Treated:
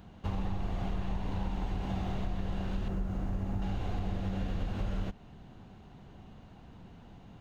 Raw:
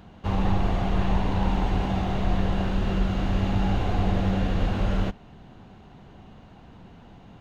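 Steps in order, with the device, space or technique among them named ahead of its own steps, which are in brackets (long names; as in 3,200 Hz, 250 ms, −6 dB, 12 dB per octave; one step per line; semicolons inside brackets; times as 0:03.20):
0:02.88–0:03.62: parametric band 3,500 Hz −11.5 dB 1.6 octaves
ASMR close-microphone chain (low-shelf EQ 240 Hz +4 dB; downward compressor, threshold −23 dBFS, peak gain reduction 9.5 dB; high-shelf EQ 6,000 Hz +6 dB)
level −6.5 dB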